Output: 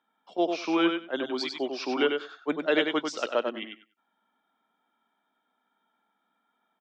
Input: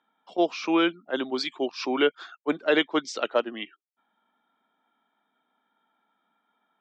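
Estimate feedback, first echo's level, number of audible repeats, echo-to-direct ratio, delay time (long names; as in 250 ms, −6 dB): 16%, −5.5 dB, 2, −5.5 dB, 96 ms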